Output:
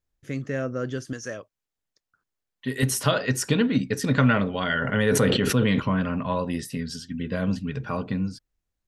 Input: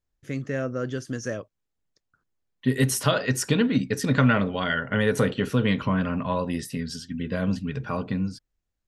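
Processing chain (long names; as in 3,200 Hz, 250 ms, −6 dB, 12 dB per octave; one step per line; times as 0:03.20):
0:01.13–0:02.83: low-shelf EQ 450 Hz −8.5 dB
0:04.63–0:05.80: level that may fall only so fast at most 24 dB per second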